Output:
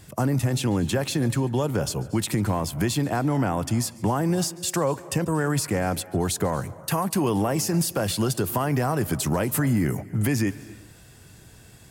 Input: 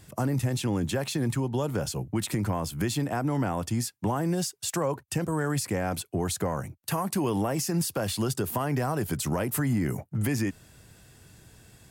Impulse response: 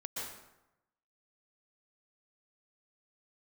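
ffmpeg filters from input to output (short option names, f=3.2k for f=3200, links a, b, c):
-filter_complex "[0:a]asplit=2[a][b];[1:a]atrim=start_sample=2205,asetrate=61740,aresample=44100,adelay=142[c];[b][c]afir=irnorm=-1:irlink=0,volume=-15.5dB[d];[a][d]amix=inputs=2:normalize=0,volume=4dB"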